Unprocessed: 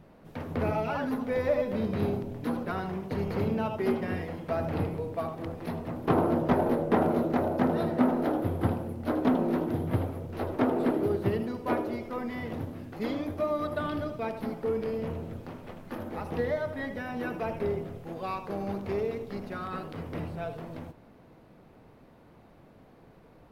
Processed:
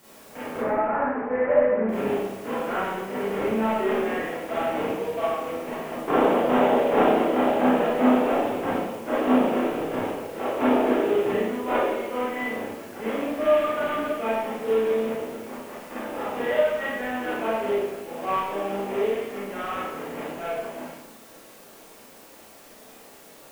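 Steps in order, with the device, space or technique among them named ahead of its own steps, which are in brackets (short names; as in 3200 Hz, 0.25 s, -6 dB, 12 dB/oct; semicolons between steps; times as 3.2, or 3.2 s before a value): army field radio (BPF 340–2900 Hz; CVSD 16 kbps; white noise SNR 26 dB); 0.57–1.89 steep low-pass 2000 Hz 36 dB/oct; Schroeder reverb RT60 0.72 s, combs from 28 ms, DRR -8 dB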